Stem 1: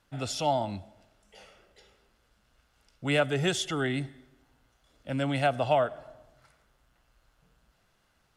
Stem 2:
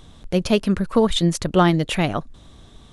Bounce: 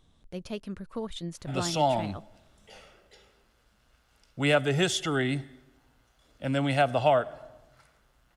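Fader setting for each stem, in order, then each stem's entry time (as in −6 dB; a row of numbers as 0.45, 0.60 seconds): +2.0, −18.0 decibels; 1.35, 0.00 seconds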